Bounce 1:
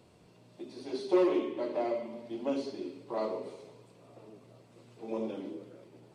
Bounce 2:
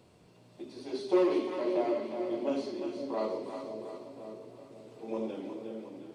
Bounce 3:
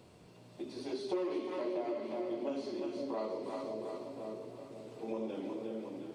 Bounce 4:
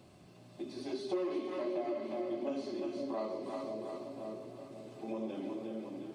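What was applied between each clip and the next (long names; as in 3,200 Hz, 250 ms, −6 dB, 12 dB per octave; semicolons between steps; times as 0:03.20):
echo with a time of its own for lows and highs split 590 Hz, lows 531 ms, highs 357 ms, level −6.5 dB
downward compressor 3 to 1, threshold −38 dBFS, peak gain reduction 13 dB; level +2 dB
notch comb filter 470 Hz; level +1 dB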